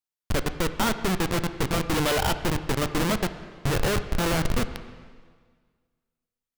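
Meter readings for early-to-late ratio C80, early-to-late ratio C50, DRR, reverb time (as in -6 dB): 12.5 dB, 11.5 dB, 10.0 dB, 1.7 s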